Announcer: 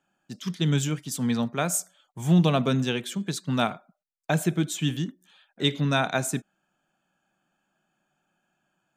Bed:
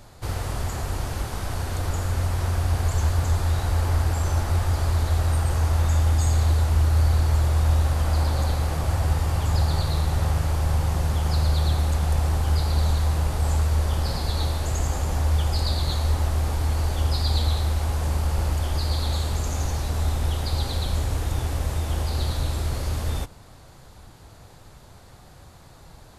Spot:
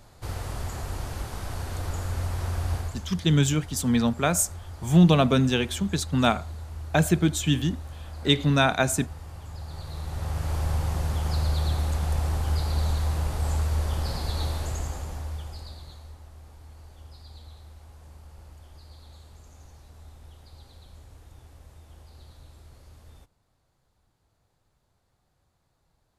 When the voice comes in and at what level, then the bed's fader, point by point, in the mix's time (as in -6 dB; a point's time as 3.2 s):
2.65 s, +3.0 dB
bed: 2.75 s -5 dB
3.08 s -17.5 dB
9.59 s -17.5 dB
10.55 s -4 dB
14.6 s -4 dB
16.21 s -24 dB